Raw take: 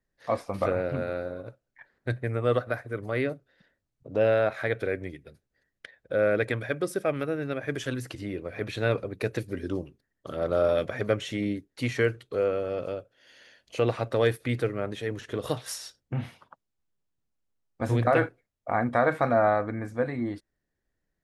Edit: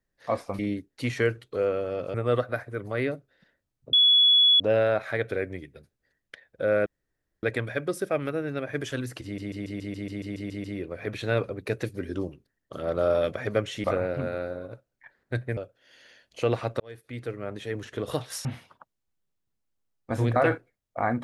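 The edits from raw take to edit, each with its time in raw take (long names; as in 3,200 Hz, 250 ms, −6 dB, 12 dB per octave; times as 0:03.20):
0:00.59–0:02.32: swap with 0:11.38–0:12.93
0:04.11: insert tone 3,390 Hz −15 dBFS 0.67 s
0:06.37: splice in room tone 0.57 s
0:08.18: stutter 0.14 s, 11 plays
0:14.16–0:15.18: fade in
0:15.81–0:16.16: remove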